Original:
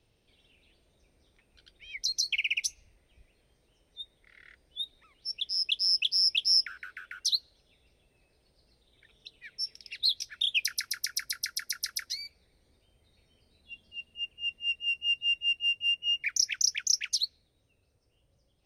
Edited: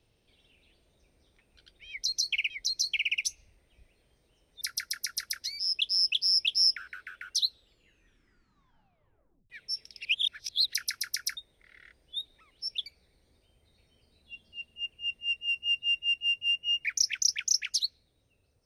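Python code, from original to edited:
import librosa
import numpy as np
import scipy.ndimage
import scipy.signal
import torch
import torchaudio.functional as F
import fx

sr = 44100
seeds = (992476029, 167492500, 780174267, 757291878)

y = fx.edit(x, sr, fx.repeat(start_s=1.89, length_s=0.61, count=2),
    fx.swap(start_s=4.0, length_s=1.49, other_s=11.27, other_length_s=0.98),
    fx.tape_stop(start_s=7.31, length_s=2.09),
    fx.reverse_span(start_s=9.95, length_s=0.69), tone=tone)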